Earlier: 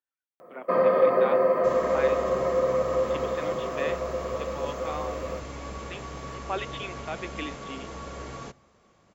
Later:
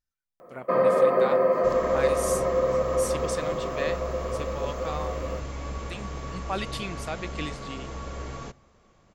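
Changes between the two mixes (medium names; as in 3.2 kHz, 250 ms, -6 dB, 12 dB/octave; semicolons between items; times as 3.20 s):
speech: remove Chebyshev band-pass 260–3500 Hz, order 5; master: remove high-pass 120 Hz 6 dB/octave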